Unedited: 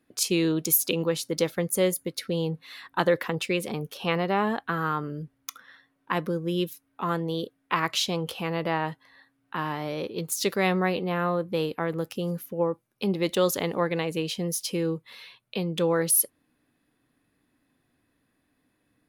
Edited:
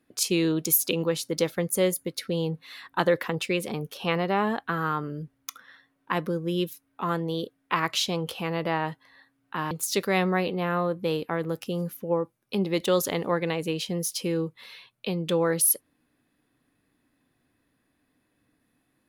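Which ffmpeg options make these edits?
-filter_complex "[0:a]asplit=2[a][b];[a]atrim=end=9.712[c];[b]atrim=start=10.198[d];[c][d]acrossfade=d=0.004:c1=hsin:c2=hsin"

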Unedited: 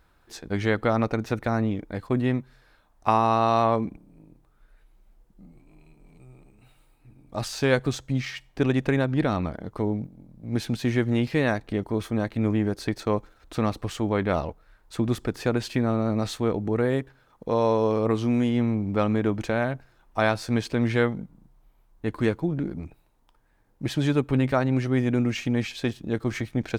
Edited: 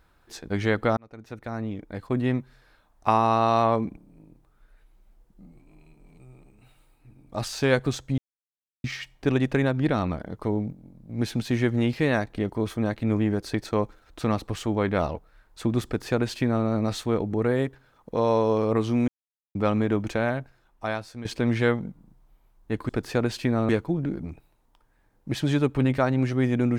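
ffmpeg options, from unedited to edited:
-filter_complex "[0:a]asplit=8[a][b][c][d][e][f][g][h];[a]atrim=end=0.97,asetpts=PTS-STARTPTS,afade=t=out:st=0.966:d=0.004:c=hsin[i];[b]atrim=start=0.97:end=8.18,asetpts=PTS-STARTPTS,afade=t=in:d=1.39,afade=t=out:st=7.206:d=0.004:c=hsin,apad=pad_dur=0.66[j];[c]atrim=start=8.18:end=18.42,asetpts=PTS-STARTPTS,afade=t=in:d=0.004:c=hsin,afade=t=out:st=10.236:d=0.004:c=hsin[k];[d]atrim=start=18.42:end=18.89,asetpts=PTS-STARTPTS,volume=0[l];[e]atrim=start=18.89:end=20.59,asetpts=PTS-STARTPTS,afade=t=in:d=0.004:c=hsin,afade=t=out:st=0.67:d=1.03:silence=0.177828[m];[f]atrim=start=20.59:end=22.232,asetpts=PTS-STARTPTS,afade=t=in:d=0.004:c=hsin:silence=0.177828[n];[g]atrim=start=15.198:end=16.002[o];[h]atrim=start=22.228[p];[i][j][k][l][m][n]concat=n=6:v=0:a=1[q];[q][o]acrossfade=d=0.004:c1=hsin:c2=hsin[r];[r][p]acrossfade=d=0.004:c1=hsin:c2=hsin"

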